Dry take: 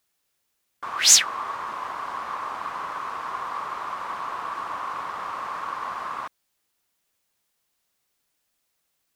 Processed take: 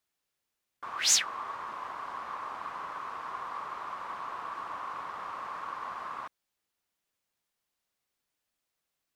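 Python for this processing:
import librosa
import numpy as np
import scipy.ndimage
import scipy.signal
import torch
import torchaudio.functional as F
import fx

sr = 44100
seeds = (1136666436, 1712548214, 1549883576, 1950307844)

y = fx.high_shelf(x, sr, hz=5800.0, db=-5.0)
y = y * librosa.db_to_amplitude(-7.0)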